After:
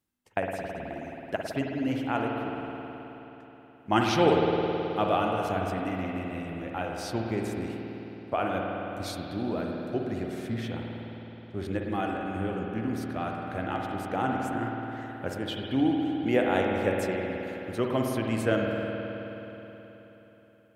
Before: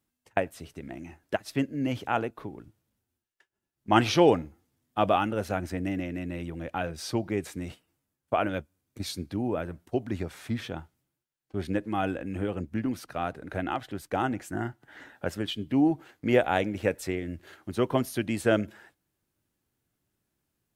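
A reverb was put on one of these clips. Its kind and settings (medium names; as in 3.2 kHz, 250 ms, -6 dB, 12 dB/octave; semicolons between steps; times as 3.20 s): spring tank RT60 3.8 s, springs 53 ms, chirp 50 ms, DRR -0.5 dB; trim -3 dB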